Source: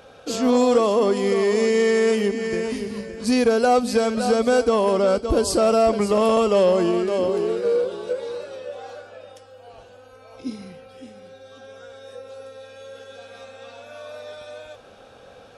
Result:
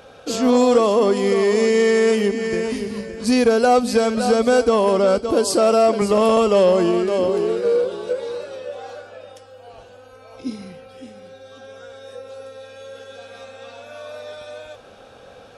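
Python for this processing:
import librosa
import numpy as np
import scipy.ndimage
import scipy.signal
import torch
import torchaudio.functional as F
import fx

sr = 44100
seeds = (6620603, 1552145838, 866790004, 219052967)

y = fx.highpass(x, sr, hz=190.0, slope=12, at=(5.29, 6.02))
y = y * 10.0 ** (2.5 / 20.0)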